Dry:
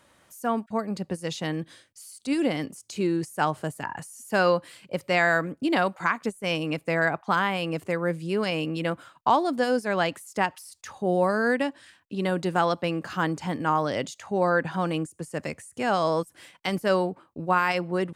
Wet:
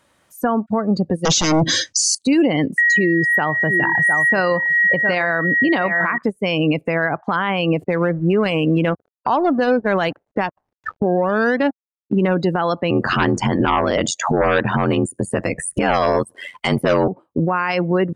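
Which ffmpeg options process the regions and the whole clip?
-filter_complex "[0:a]asettb=1/sr,asplit=3[a][b][c];[a]atrim=end=1.254[d];[b]atrim=start=1.25:end=2.15,asetpts=PTS-STARTPTS,afade=t=in:d=0.004:c=qsin,afade=t=out:st=0.896:d=0.004:c=qsin,acompressor=threshold=-38dB:ratio=5:attack=3.2:release=140:knee=1:detection=peak,aeval=exprs='0.0473*sin(PI/2*5.01*val(0)/0.0473)':c=same,lowpass=f=6.2k:t=q:w=3.4[e];[c]atrim=start=2.146[f];[d][e]acrossfade=d=0.004:c1=hsin:c2=qsin[g];[g][f]acrossfade=d=0.004:c1=qsin:c2=hsin,asettb=1/sr,asplit=3[h][i][j];[h]atrim=end=2.784[k];[i]atrim=start=2.78:end=6.18,asetpts=PTS-STARTPTS,afade=t=in:d=0.004:c=qsin,afade=t=out:st=3.396:d=0.004:c=qsin,aeval=exprs='val(0)+0.0398*sin(2*PI*1900*n/s)':c=same,aecho=1:1:707:0.211,atrim=end_sample=149940[l];[j]atrim=start=6.176[m];[k][l]acrossfade=d=0.004:c1=hsin:c2=qsin[n];[n][m]acrossfade=d=0.004:c1=qsin:c2=hsin,asettb=1/sr,asplit=3[o][p][q];[o]atrim=end=7.844[r];[p]atrim=start=7.84:end=12.35,asetpts=PTS-STARTPTS,afade=t=in:d=0.004:c=qsin,afade=t=out:st=4.506:d=0.004:c=qsin,aeval=exprs='val(0)*gte(abs(val(0)),0.0106)':c=same,adynamicsmooth=sensitivity=6:basefreq=610[s];[q]atrim=start=12.346[t];[r][s]acrossfade=d=0.004:c1=hsin:c2=qsin[u];[u][t]acrossfade=d=0.004:c1=qsin:c2=hsin,asettb=1/sr,asplit=3[v][w][x];[v]atrim=end=12.904[y];[w]atrim=start=12.9:end=17.08,asetpts=PTS-STARTPTS,afade=t=in:d=0.004:c=qsin,afade=t=out:st=4.176:d=0.004:c=qsin,aeval=exprs='0.299*sin(PI/2*2*val(0)/0.299)':c=same,aeval=exprs='val(0)*sin(2*PI*44*n/s)':c=same[z];[x]atrim=start=17.076[aa];[y][z]acrossfade=d=0.004:c1=hsin:c2=qsin[ab];[ab][aa]acrossfade=d=0.004:c1=qsin:c2=hsin,afftdn=nr=26:nf=-36,acompressor=threshold=-43dB:ratio=3,alimiter=level_in=33.5dB:limit=-1dB:release=50:level=0:latency=1,volume=-7.5dB"

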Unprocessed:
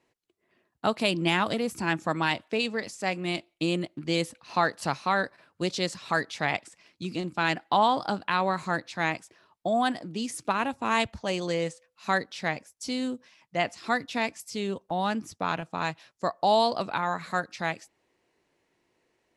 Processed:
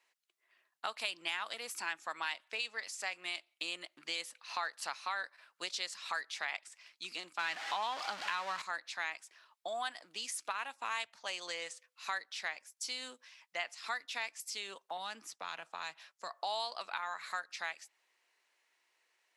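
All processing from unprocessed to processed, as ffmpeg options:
-filter_complex "[0:a]asettb=1/sr,asplit=3[a][b][c];[a]atrim=end=7.394[d];[b]atrim=start=7.39:end=8.62,asetpts=PTS-STARTPTS,afade=t=in:d=0.004:c=qsin,afade=t=out:st=1.226:d=0.004:c=qsin,aeval=exprs='val(0)+0.5*0.0501*sgn(val(0))':c=same,lowpass=5.4k,bass=f=250:g=7,treble=f=4k:g=0[e];[c]atrim=start=8.616[f];[d][e]acrossfade=d=0.004:c1=hsin:c2=qsin[g];[g][f]acrossfade=d=0.004:c1=qsin:c2=hsin,asettb=1/sr,asplit=3[h][i][j];[h]atrim=end=14.974[k];[i]atrim=start=14.97:end=16.3,asetpts=PTS-STARTPTS,afade=t=in:d=0.004:c=qsin,afade=t=out:st=1.326:d=0.004:c=qsin,tiltshelf=f=1.4k:g=3.5,acrossover=split=220|3000[l][m][n];[m]acompressor=threshold=-31dB:ratio=6:attack=3.2:release=140:knee=2.83:detection=peak[o];[l][o][n]amix=inputs=3:normalize=0[p];[j]atrim=start=16.296[q];[k][p]acrossfade=d=0.004:c1=hsin:c2=qsin[r];[r][q]acrossfade=d=0.004:c1=qsin:c2=hsin,highpass=1.2k,acompressor=threshold=-39dB:ratio=2.5,volume=1dB"

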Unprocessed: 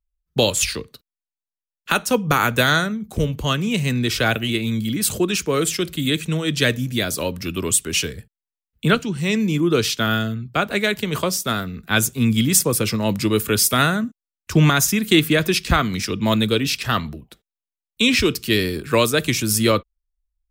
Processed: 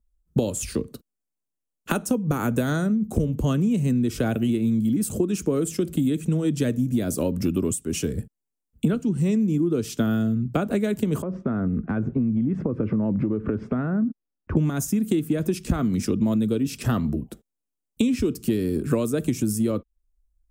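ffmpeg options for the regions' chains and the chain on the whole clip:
-filter_complex "[0:a]asettb=1/sr,asplit=3[a][b][c];[a]atrim=end=11.224[d];[b]atrim=start=11.22:end=14.57,asetpts=PTS-STARTPTS,afade=t=in:d=0.004:c=qsin,afade=t=out:st=3.346:d=0.004:c=qsin,lowpass=f=1.9k:w=0.5412,lowpass=f=1.9k:w=1.3066,acompressor=threshold=-29dB:ratio=10:attack=3.2:release=140:knee=1:detection=peak[e];[c]atrim=start=14.566[f];[d][e]acrossfade=d=0.004:c1=hsin:c2=qsin[g];[g][f]acrossfade=d=0.004:c1=qsin:c2=hsin,equalizer=f=250:t=o:w=1:g=7,equalizer=f=1k:t=o:w=1:g=-4,equalizer=f=2k:t=o:w=1:g=-7,equalizer=f=4k:t=o:w=1:g=-9,equalizer=f=8k:t=o:w=1:g=5,acompressor=threshold=-27dB:ratio=16,tiltshelf=f=1.4k:g=4,volume=4.5dB"

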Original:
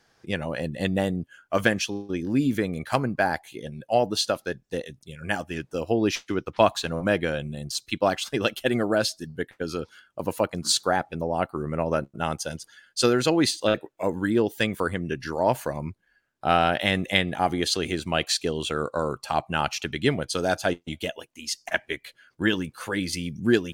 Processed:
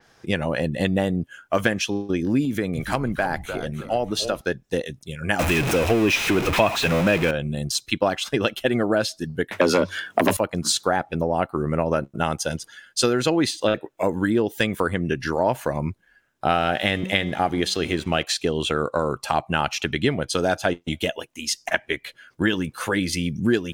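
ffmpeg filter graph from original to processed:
-filter_complex "[0:a]asettb=1/sr,asplit=3[a][b][c];[a]atrim=end=2.454[d];[b]atrim=start=2.45:end=4.41,asetpts=PTS-STARTPTS,afade=t=in:d=0.004:c=qsin,afade=t=out:st=1.956:d=0.004:c=qsin,acompressor=threshold=-33dB:ratio=1.5:attack=3.2:release=140:knee=1:detection=peak,highpass=45,asplit=5[e][f][g][h][i];[f]adelay=298,afreqshift=-140,volume=-10.5dB[j];[g]adelay=596,afreqshift=-280,volume=-19.4dB[k];[h]adelay=894,afreqshift=-420,volume=-28.2dB[l];[i]adelay=1192,afreqshift=-560,volume=-37.1dB[m];[e][j][k][l][m]amix=inputs=5:normalize=0,atrim=end_sample=86436[n];[c]atrim=start=4.406[o];[d][n]acrossfade=d=0.004:c1=hsin:c2=qsin[p];[p][o]acrossfade=d=0.004:c1=qsin:c2=hsin,asettb=1/sr,asplit=3[q][r][s];[q]atrim=end=5.394[t];[r]atrim=start=5.39:end=7.31,asetpts=PTS-STARTPTS,afade=t=in:d=0.004:c=qsin,afade=t=out:st=1.916:d=0.004:c=qsin,aeval=exprs='val(0)+0.5*0.0794*sgn(val(0))':c=same,equalizer=f=2.5k:w=6.8:g=9[u];[s]atrim=start=7.306[v];[t][u]acrossfade=d=0.004:c1=hsin:c2=qsin[w];[w][v]acrossfade=d=0.004:c1=qsin:c2=hsin,asettb=1/sr,asplit=3[x][y][z];[x]atrim=end=9.514[aa];[y]atrim=start=9.51:end=10.37,asetpts=PTS-STARTPTS,afade=t=in:d=0.004:c=qsin,afade=t=out:st=0.856:d=0.004:c=qsin,aeval=exprs='0.299*sin(PI/2*4.47*val(0)/0.299)':c=same,afreqshift=92[ab];[z]atrim=start=10.366[ac];[aa][ab]acrossfade=d=0.004:c1=hsin:c2=qsin[ad];[ad][ac]acrossfade=d=0.004:c1=qsin:c2=hsin,asettb=1/sr,asplit=3[ae][af][ag];[ae]atrim=end=16.544[ah];[af]atrim=start=16.54:end=18.23,asetpts=PTS-STARTPTS,afade=t=in:d=0.004:c=qsin,afade=t=out:st=1.686:d=0.004:c=qsin,bandreject=f=990:w=9.2,bandreject=f=188.6:t=h:w=4,bandreject=f=377.2:t=h:w=4,bandreject=f=565.8:t=h:w=4,bandreject=f=754.4:t=h:w=4,bandreject=f=943:t=h:w=4,bandreject=f=1.1316k:t=h:w=4,bandreject=f=1.3202k:t=h:w=4,bandreject=f=1.5088k:t=h:w=4,bandreject=f=1.6974k:t=h:w=4,bandreject=f=1.886k:t=h:w=4,bandreject=f=2.0746k:t=h:w=4,bandreject=f=2.2632k:t=h:w=4,bandreject=f=2.4518k:t=h:w=4,bandreject=f=2.6404k:t=h:w=4,bandreject=f=2.829k:t=h:w=4,bandreject=f=3.0176k:t=h:w=4,bandreject=f=3.2062k:t=h:w=4,bandreject=f=3.3948k:t=h:w=4,bandreject=f=3.5834k:t=h:w=4,bandreject=f=3.772k:t=h:w=4,bandreject=f=3.9606k:t=h:w=4,bandreject=f=4.1492k:t=h:w=4,bandreject=f=4.3378k:t=h:w=4,bandreject=f=4.5264k:t=h:w=4,bandreject=f=4.715k:t=h:w=4,bandreject=f=4.9036k:t=h:w=4,bandreject=f=5.0922k:t=h:w=4,bandreject=f=5.2808k:t=h:w=4,bandreject=f=5.4694k:t=h:w=4,bandreject=f=5.658k:t=h:w=4,bandreject=f=5.8466k:t=h:w=4,bandreject=f=6.0352k:t=h:w=4,bandreject=f=6.2238k:t=h:w=4,bandreject=f=6.4124k:t=h:w=4,bandreject=f=6.601k:t=h:w=4,bandreject=f=6.7896k:t=h:w=4,bandreject=f=6.9782k:t=h:w=4,aeval=exprs='sgn(val(0))*max(abs(val(0))-0.00422,0)':c=same[ai];[ag]atrim=start=18.226[aj];[ah][ai]acrossfade=d=0.004:c1=hsin:c2=qsin[ak];[ak][aj]acrossfade=d=0.004:c1=qsin:c2=hsin,acompressor=threshold=-27dB:ratio=2.5,bandreject=f=4.5k:w=16,adynamicequalizer=threshold=0.00447:dfrequency=4500:dqfactor=0.7:tfrequency=4500:tqfactor=0.7:attack=5:release=100:ratio=0.375:range=3:mode=cutabove:tftype=highshelf,volume=7.5dB"

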